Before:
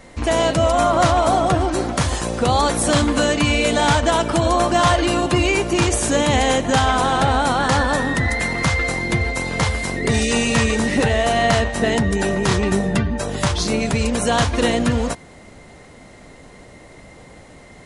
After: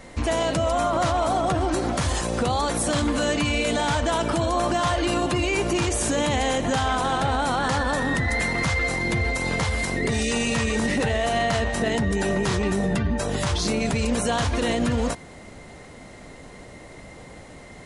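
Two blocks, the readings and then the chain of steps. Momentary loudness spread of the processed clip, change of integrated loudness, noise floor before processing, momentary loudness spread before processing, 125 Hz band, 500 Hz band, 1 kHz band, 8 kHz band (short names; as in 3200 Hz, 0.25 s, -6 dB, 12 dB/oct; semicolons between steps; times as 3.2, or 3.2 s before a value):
20 LU, -5.0 dB, -44 dBFS, 5 LU, -5.5 dB, -5.5 dB, -6.0 dB, -5.0 dB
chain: limiter -15 dBFS, peak gain reduction 8 dB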